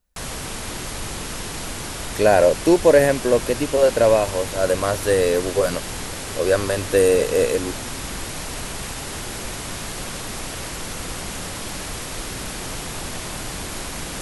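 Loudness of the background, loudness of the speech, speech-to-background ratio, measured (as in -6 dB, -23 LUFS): -29.5 LUFS, -18.5 LUFS, 11.0 dB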